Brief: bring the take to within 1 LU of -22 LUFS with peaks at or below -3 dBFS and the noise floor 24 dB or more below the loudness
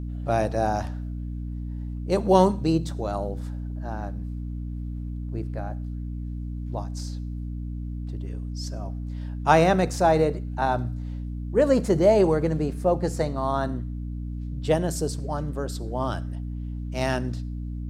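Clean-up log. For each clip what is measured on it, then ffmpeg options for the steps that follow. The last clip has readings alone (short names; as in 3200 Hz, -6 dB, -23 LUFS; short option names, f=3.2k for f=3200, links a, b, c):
hum 60 Hz; harmonics up to 300 Hz; hum level -29 dBFS; loudness -26.5 LUFS; peak -3.5 dBFS; loudness target -22.0 LUFS
-> -af "bandreject=f=60:t=h:w=4,bandreject=f=120:t=h:w=4,bandreject=f=180:t=h:w=4,bandreject=f=240:t=h:w=4,bandreject=f=300:t=h:w=4"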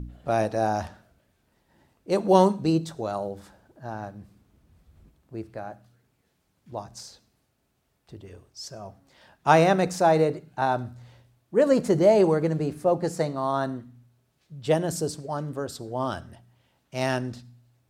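hum none; loudness -24.5 LUFS; peak -4.0 dBFS; loudness target -22.0 LUFS
-> -af "volume=2.5dB,alimiter=limit=-3dB:level=0:latency=1"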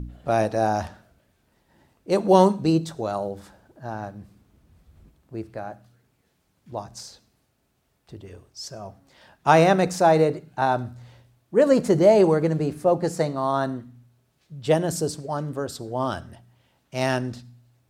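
loudness -22.0 LUFS; peak -3.0 dBFS; noise floor -69 dBFS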